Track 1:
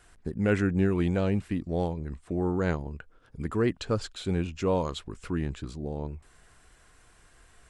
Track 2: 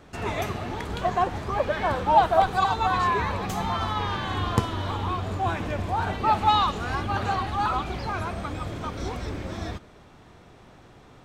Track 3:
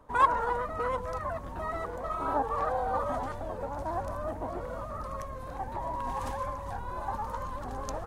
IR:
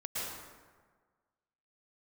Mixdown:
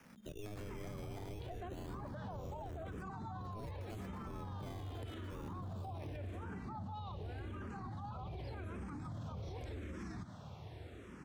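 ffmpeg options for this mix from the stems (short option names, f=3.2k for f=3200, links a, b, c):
-filter_complex "[0:a]aeval=exprs='val(0)*sin(2*PI*210*n/s)':c=same,acrusher=samples=11:mix=1:aa=0.000001:lfo=1:lforange=11:lforate=0.26,volume=-0.5dB,asplit=2[a][b];[b]volume=-16dB[c];[1:a]highpass=f=73:w=0.5412,highpass=f=73:w=1.3066,lowshelf=f=180:g=11.5,asplit=2[d][e];[e]afreqshift=-0.86[f];[d][f]amix=inputs=2:normalize=1,adelay=450,volume=-1.5dB[g];[2:a]adelay=1750,volume=-15dB[h];[c]aecho=0:1:228:1[i];[a][g][h][i]amix=inputs=4:normalize=0,acrossover=split=160|700[j][k][l];[j]acompressor=threshold=-33dB:ratio=4[m];[k]acompressor=threshold=-38dB:ratio=4[n];[l]acompressor=threshold=-45dB:ratio=4[o];[m][n][o]amix=inputs=3:normalize=0,alimiter=level_in=14dB:limit=-24dB:level=0:latency=1:release=92,volume=-14dB"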